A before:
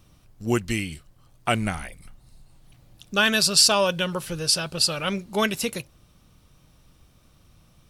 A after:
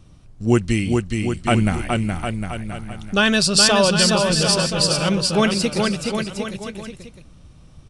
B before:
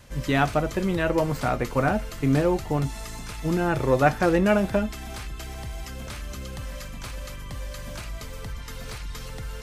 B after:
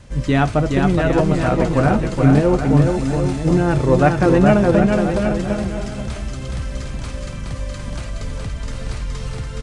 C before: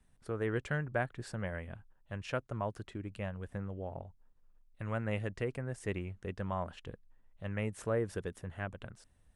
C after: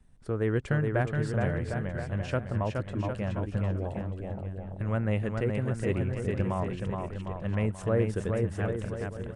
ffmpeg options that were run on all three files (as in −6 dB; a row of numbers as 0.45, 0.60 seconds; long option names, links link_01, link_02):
-filter_complex "[0:a]aresample=22050,aresample=44100,lowshelf=frequency=470:gain=7.5,asplit=2[link_01][link_02];[link_02]aecho=0:1:420|756|1025|1240|1412:0.631|0.398|0.251|0.158|0.1[link_03];[link_01][link_03]amix=inputs=2:normalize=0,volume=1.5dB"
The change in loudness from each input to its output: +3.5, +8.0, +8.0 LU